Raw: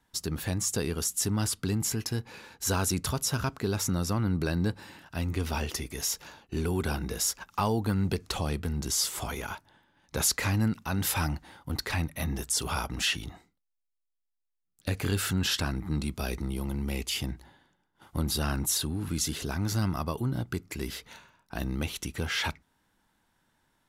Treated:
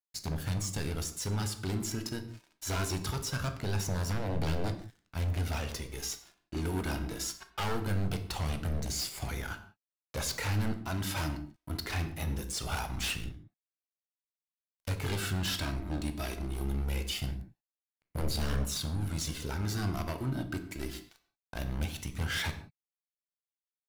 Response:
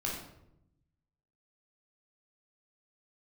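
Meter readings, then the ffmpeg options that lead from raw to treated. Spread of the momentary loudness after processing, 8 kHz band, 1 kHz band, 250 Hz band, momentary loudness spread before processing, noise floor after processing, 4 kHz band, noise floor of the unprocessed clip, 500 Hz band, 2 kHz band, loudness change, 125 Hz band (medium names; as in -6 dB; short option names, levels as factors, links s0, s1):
8 LU, -8.0 dB, -4.0 dB, -5.5 dB, 9 LU, under -85 dBFS, -4.5 dB, -81 dBFS, -4.5 dB, -3.5 dB, -4.5 dB, -2.5 dB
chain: -filter_complex "[0:a]acrossover=split=6200[s0][s1];[s1]acompressor=threshold=0.0158:ratio=4:attack=1:release=60[s2];[s0][s2]amix=inputs=2:normalize=0,aeval=exprs='sgn(val(0))*max(abs(val(0))-0.00708,0)':c=same,flanger=delay=0.4:depth=2.8:regen=42:speed=0.22:shape=sinusoidal,aeval=exprs='0.0316*(abs(mod(val(0)/0.0316+3,4)-2)-1)':c=same,asplit=2[s3][s4];[1:a]atrim=start_sample=2205,afade=t=out:st=0.24:d=0.01,atrim=end_sample=11025[s5];[s4][s5]afir=irnorm=-1:irlink=0,volume=0.422[s6];[s3][s6]amix=inputs=2:normalize=0"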